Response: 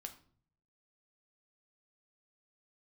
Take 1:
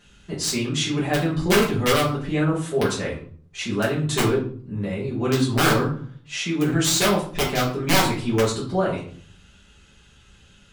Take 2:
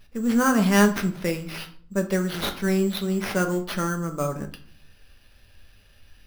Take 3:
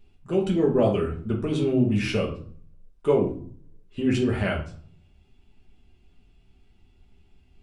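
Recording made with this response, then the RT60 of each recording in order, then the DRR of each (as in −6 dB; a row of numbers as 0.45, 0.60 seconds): 2; 0.50, 0.50, 0.50 seconds; −7.5, 4.5, −2.5 decibels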